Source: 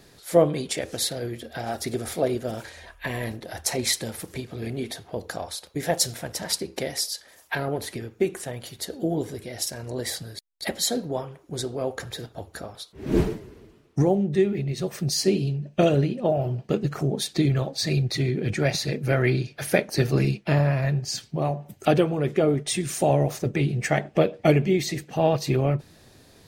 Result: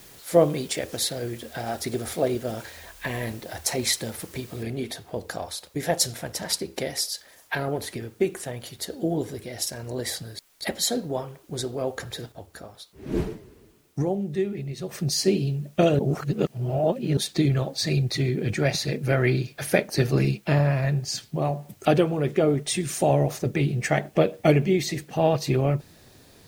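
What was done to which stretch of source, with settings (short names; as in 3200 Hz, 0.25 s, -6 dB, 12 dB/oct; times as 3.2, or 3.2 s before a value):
4.63 noise floor step -50 dB -62 dB
12.32–14.89 gain -5 dB
15.99–17.17 reverse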